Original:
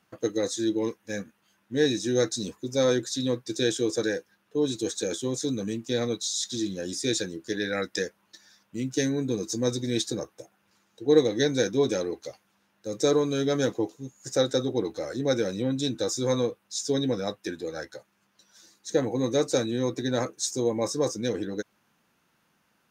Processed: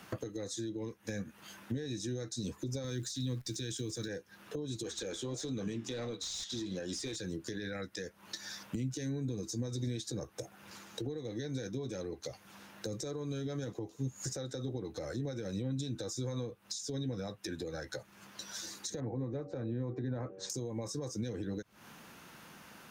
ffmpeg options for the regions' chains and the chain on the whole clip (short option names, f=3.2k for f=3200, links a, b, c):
-filter_complex "[0:a]asettb=1/sr,asplit=3[a][b][c];[a]atrim=end=2.844[d];[b]atrim=start=2.84:end=4.08,asetpts=PTS-STARTPTS,afade=t=in:d=0.004:c=qsin,afade=t=out:st=1.236:d=0.004:c=qsin,equalizer=f=670:w=0.81:g=-12.5,acontrast=81,acrusher=bits=9:dc=4:mix=0:aa=0.000001[e];[c]atrim=start=4.076[f];[d][e]acrossfade=d=0.004:c1=hsin:c2=qsin[g];[g][f]acrossfade=d=0.004:c1=qsin:c2=hsin,asettb=1/sr,asplit=3[h][i][j];[h]atrim=end=4.834[k];[i]atrim=start=4.83:end=7.16,asetpts=PTS-STARTPTS,afade=t=in:d=0.004:c=qsin,afade=t=out:st=2.326:d=0.004:c=qsin,flanger=delay=5.1:depth=7:regen=-85:speed=1.5:shape=sinusoidal,asplit=2[l][m];[m]highpass=f=720:p=1,volume=16dB,asoftclip=type=tanh:threshold=-17dB[n];[l][n]amix=inputs=2:normalize=0,lowpass=f=2.6k:p=1,volume=-6dB[o];[j]atrim=start=7.156[p];[k][o]acrossfade=d=0.004:c1=hsin:c2=qsin[q];[q][p]acrossfade=d=0.004:c1=qsin:c2=hsin,asettb=1/sr,asplit=3[r][s][t];[r]atrim=end=19.004[u];[s]atrim=start=19:end=20.5,asetpts=PTS-STARTPTS,afade=t=in:d=0.004:c=qsin,afade=t=out:st=1.496:d=0.004:c=qsin,lowpass=1.6k,bandreject=f=95.18:t=h:w=4,bandreject=f=190.36:t=h:w=4,bandreject=f=285.54:t=h:w=4,bandreject=f=380.72:t=h:w=4,bandreject=f=475.9:t=h:w=4,bandreject=f=571.08:t=h:w=4,bandreject=f=666.26:t=h:w=4,bandreject=f=761.44:t=h:w=4[v];[t]atrim=start=20.496[w];[u][v]acrossfade=d=0.004:c1=hsin:c2=qsin[x];[x][w]acrossfade=d=0.004:c1=qsin:c2=hsin,acompressor=threshold=-39dB:ratio=6,alimiter=level_in=10dB:limit=-24dB:level=0:latency=1:release=52,volume=-10dB,acrossover=split=140[y][z];[z]acompressor=threshold=-55dB:ratio=6[aa];[y][aa]amix=inputs=2:normalize=0,volume=15.5dB"